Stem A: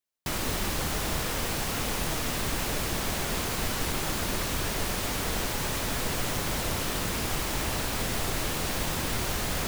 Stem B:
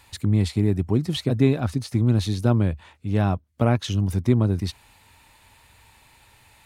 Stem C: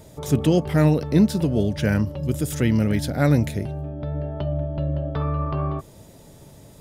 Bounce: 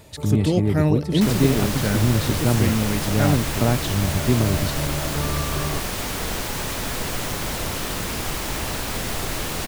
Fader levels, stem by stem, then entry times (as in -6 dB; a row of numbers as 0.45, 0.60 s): +3.0, -0.5, -2.5 dB; 0.95, 0.00, 0.00 s